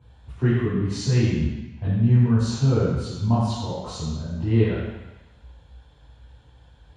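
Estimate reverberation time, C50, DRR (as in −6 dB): 1.1 s, −2.0 dB, −11.0 dB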